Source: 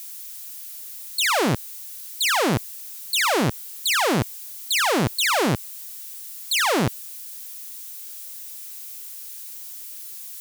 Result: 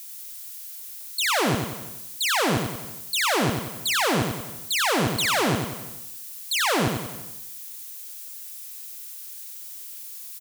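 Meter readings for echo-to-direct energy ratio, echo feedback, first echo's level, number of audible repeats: −4.0 dB, repeats not evenly spaced, −5.0 dB, 6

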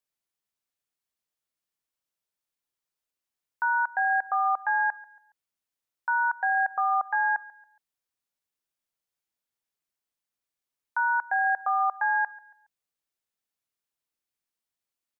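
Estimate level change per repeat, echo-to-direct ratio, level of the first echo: −9.0 dB, −20.5 dB, −21.0 dB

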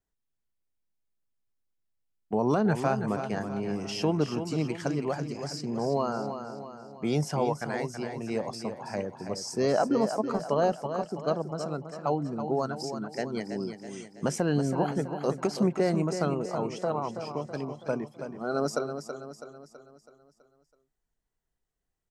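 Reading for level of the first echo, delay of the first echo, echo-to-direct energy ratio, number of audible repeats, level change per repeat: −8.5 dB, 327 ms, −7.5 dB, 5, −6.0 dB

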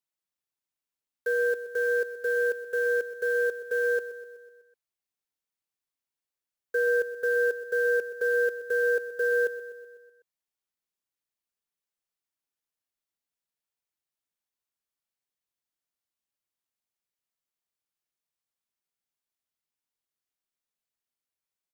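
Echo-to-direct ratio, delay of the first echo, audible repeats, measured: −12.0 dB, 125 ms, 5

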